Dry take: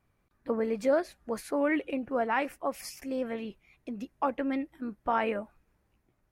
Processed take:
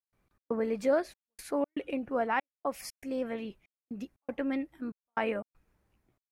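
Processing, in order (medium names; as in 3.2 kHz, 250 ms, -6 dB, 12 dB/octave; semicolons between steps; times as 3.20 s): trance gate ".xx.xxxxx." 119 bpm -60 dB; trim -1 dB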